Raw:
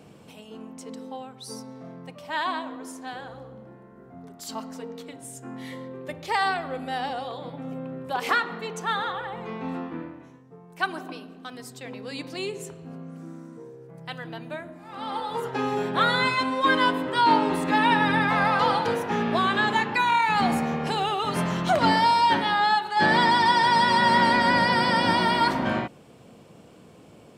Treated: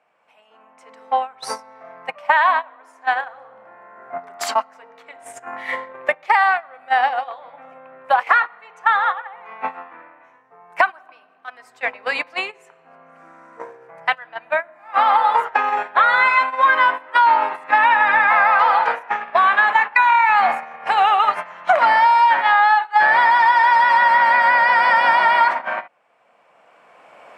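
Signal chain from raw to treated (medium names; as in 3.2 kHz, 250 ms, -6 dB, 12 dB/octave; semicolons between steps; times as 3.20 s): recorder AGC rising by 14 dB/s; frequency weighting A; gate -25 dBFS, range -20 dB; high-order bell 1.2 kHz +16 dB 2.5 oct; compression, threshold -8 dBFS, peak gain reduction 8 dB; trim -3 dB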